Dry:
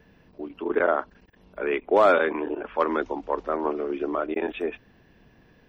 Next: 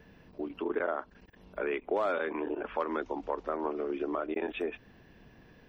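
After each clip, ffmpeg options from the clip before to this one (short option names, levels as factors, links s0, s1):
-af "acompressor=threshold=0.0282:ratio=3"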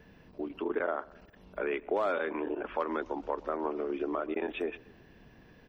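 -filter_complex "[0:a]asplit=2[s0][s1];[s1]adelay=125,lowpass=f=2000:p=1,volume=0.0841,asplit=2[s2][s3];[s3]adelay=125,lowpass=f=2000:p=1,volume=0.51,asplit=2[s4][s5];[s5]adelay=125,lowpass=f=2000:p=1,volume=0.51,asplit=2[s6][s7];[s7]adelay=125,lowpass=f=2000:p=1,volume=0.51[s8];[s0][s2][s4][s6][s8]amix=inputs=5:normalize=0"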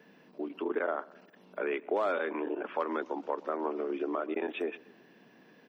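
-af "highpass=f=190:w=0.5412,highpass=f=190:w=1.3066"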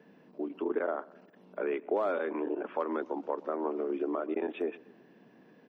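-af "tiltshelf=f=1300:g=5,volume=0.708"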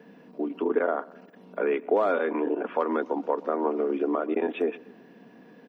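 -af "aecho=1:1:4.2:0.31,volume=2.11"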